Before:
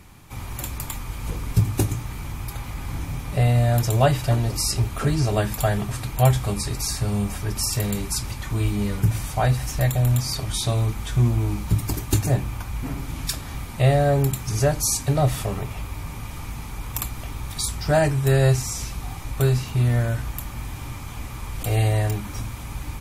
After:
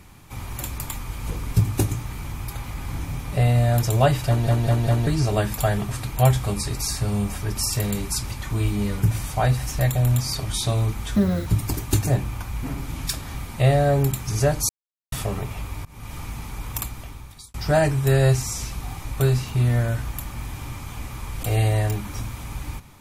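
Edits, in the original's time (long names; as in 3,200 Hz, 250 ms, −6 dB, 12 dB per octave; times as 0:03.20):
0:04.27: stutter in place 0.20 s, 4 plays
0:11.16–0:11.66: play speed 166%
0:14.89–0:15.32: silence
0:16.05–0:16.34: fade in, from −24 dB
0:16.92–0:17.74: fade out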